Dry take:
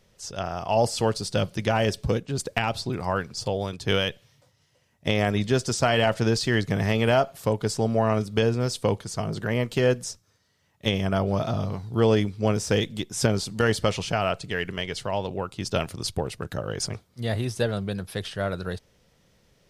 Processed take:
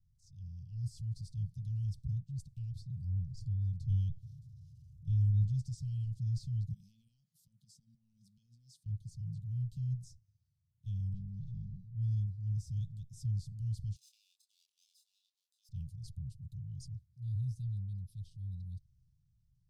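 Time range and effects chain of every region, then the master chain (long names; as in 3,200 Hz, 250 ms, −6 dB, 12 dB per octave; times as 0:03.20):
0:03.04–0:05.48: low-shelf EQ 200 Hz +9 dB + upward compression, threshold −30 dBFS
0:06.73–0:08.86: high-pass filter 240 Hz 24 dB per octave + downward compressor 16 to 1, threshold −29 dBFS
0:11.13–0:11.95: lower of the sound and its delayed copy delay 5.6 ms + linear-phase brick-wall low-pass 9,200 Hz + high-shelf EQ 3,000 Hz −9.5 dB
0:13.96–0:15.69: lower of the sound and its delayed copy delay 0.79 ms + Butterworth high-pass 2,400 Hz + double-tracking delay 26 ms −6 dB
whole clip: drawn EQ curve 130 Hz 0 dB, 310 Hz −30 dB, 500 Hz −9 dB, 3,100 Hz −24 dB; transient designer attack −6 dB, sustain +3 dB; inverse Chebyshev band-stop filter 400–1,900 Hz, stop band 50 dB; level −5 dB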